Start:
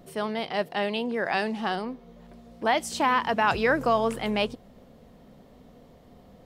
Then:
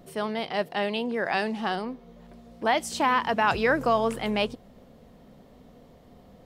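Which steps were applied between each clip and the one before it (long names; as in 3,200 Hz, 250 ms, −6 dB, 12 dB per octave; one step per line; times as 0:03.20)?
no processing that can be heard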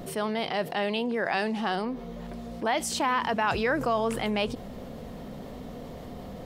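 envelope flattener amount 50%
level −4 dB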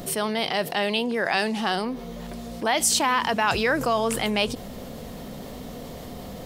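high-shelf EQ 3,500 Hz +11 dB
level +2.5 dB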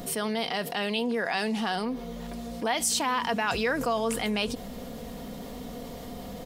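comb filter 4.2 ms, depth 35%
in parallel at −2 dB: brickwall limiter −20 dBFS, peak gain reduction 11.5 dB
on the sum: level −8 dB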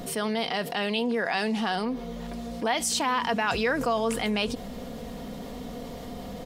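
high-shelf EQ 9,100 Hz −7.5 dB
level +1.5 dB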